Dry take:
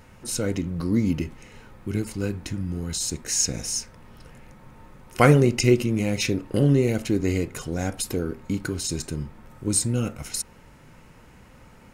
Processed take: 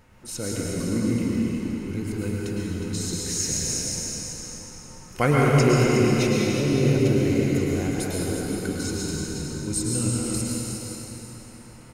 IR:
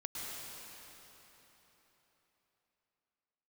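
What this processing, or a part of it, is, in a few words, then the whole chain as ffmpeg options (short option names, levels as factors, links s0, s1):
cave: -filter_complex "[0:a]aecho=1:1:363:0.376[s0];[1:a]atrim=start_sample=2205[s1];[s0][s1]afir=irnorm=-1:irlink=0,volume=0.891"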